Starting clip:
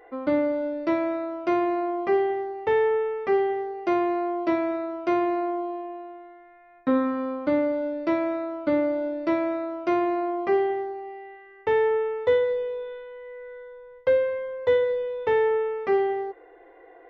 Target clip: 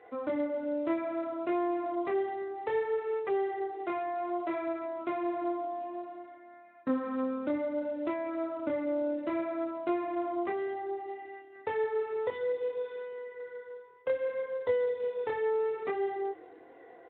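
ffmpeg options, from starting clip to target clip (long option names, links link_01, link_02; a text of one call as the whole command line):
ffmpeg -i in.wav -filter_complex "[0:a]asplit=3[link_01][link_02][link_03];[link_01]afade=type=out:start_time=3.16:duration=0.02[link_04];[link_02]equalizer=frequency=250:width=3.3:gain=-15,afade=type=in:start_time=3.16:duration=0.02,afade=type=out:start_time=4.97:duration=0.02[link_05];[link_03]afade=type=in:start_time=4.97:duration=0.02[link_06];[link_04][link_05][link_06]amix=inputs=3:normalize=0,acompressor=threshold=-28dB:ratio=3,flanger=delay=20:depth=7.4:speed=0.61,asplit=5[link_07][link_08][link_09][link_10][link_11];[link_08]adelay=171,afreqshift=-36,volume=-23.5dB[link_12];[link_09]adelay=342,afreqshift=-72,volume=-28.9dB[link_13];[link_10]adelay=513,afreqshift=-108,volume=-34.2dB[link_14];[link_11]adelay=684,afreqshift=-144,volume=-39.6dB[link_15];[link_07][link_12][link_13][link_14][link_15]amix=inputs=5:normalize=0" -ar 8000 -c:a libspeex -b:a 15k out.spx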